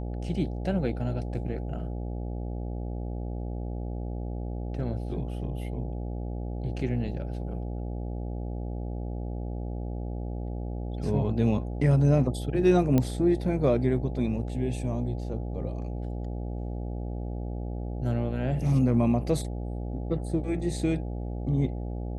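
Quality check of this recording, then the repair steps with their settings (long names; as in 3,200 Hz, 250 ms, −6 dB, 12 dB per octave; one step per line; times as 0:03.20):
mains buzz 60 Hz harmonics 14 −33 dBFS
0:12.98: click −12 dBFS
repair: click removal
hum removal 60 Hz, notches 14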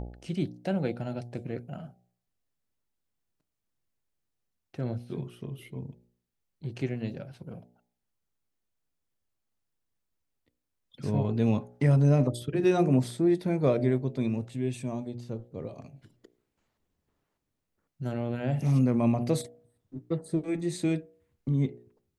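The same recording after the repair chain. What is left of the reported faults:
none of them is left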